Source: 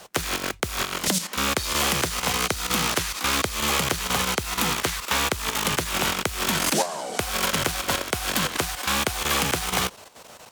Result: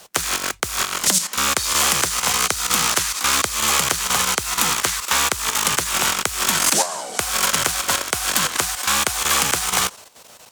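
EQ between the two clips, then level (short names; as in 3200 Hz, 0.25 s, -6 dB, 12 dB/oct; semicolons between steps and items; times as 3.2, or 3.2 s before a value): dynamic EQ 7500 Hz, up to +6 dB, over -41 dBFS, Q 0.95; high shelf 3100 Hz +7.5 dB; dynamic EQ 1200 Hz, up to +7 dB, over -36 dBFS, Q 0.8; -3.0 dB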